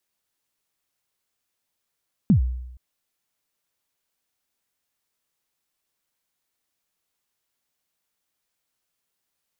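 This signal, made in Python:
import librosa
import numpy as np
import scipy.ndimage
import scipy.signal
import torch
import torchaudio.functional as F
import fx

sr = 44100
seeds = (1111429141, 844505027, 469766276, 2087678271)

y = fx.drum_kick(sr, seeds[0], length_s=0.47, level_db=-10.5, start_hz=240.0, end_hz=62.0, sweep_ms=106.0, decay_s=0.89, click=False)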